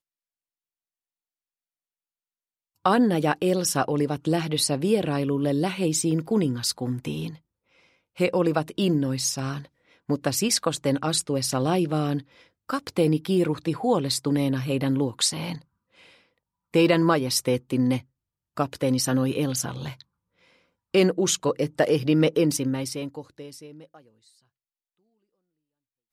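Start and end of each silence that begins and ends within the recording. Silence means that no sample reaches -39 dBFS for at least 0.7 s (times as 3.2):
7.36–8.18
15.58–16.74
20.02–20.94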